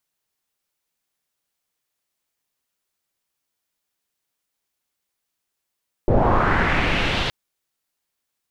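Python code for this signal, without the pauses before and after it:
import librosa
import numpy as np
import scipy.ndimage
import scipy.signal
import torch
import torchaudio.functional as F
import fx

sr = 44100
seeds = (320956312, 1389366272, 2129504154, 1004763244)

y = fx.riser_noise(sr, seeds[0], length_s=1.22, colour='pink', kind='lowpass', start_hz=440.0, end_hz=3500.0, q=2.3, swell_db=-7.5, law='linear')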